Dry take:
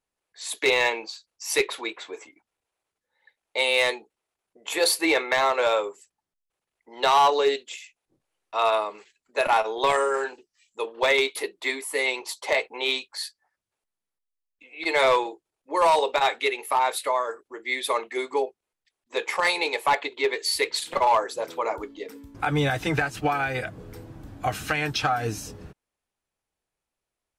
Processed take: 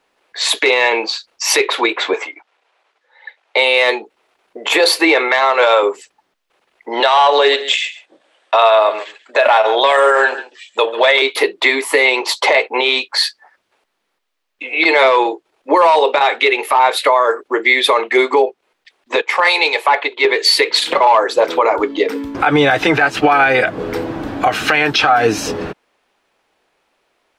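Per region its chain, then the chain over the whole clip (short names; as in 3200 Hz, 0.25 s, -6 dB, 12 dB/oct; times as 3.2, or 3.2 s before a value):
2.13–3.57 HPF 540 Hz + air absorption 58 m
5.28–5.83 low shelf 350 Hz -10 dB + notch 2500 Hz, Q 26
7–11.22 speaker cabinet 310–9900 Hz, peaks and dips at 390 Hz -5 dB, 610 Hz +7 dB, 1700 Hz +5 dB, 3400 Hz +7 dB, 8300 Hz +7 dB + echo 0.137 s -19 dB
19.21–20.25 HPF 440 Hz 6 dB/oct + three-band expander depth 100%
whole clip: three-band isolator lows -17 dB, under 240 Hz, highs -15 dB, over 4500 Hz; compressor 2:1, threshold -38 dBFS; maximiser +26.5 dB; gain -1.5 dB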